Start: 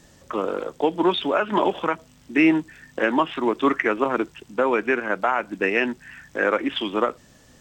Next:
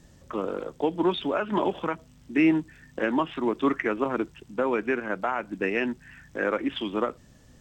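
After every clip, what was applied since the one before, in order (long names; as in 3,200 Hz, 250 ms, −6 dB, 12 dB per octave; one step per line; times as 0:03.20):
low-shelf EQ 250 Hz +10 dB
level −7 dB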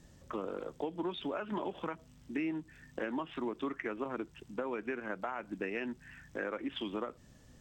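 downward compressor 4 to 1, threshold −30 dBFS, peak gain reduction 11.5 dB
level −4.5 dB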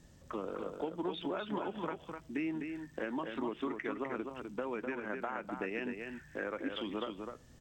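single-tap delay 253 ms −5.5 dB
level −1 dB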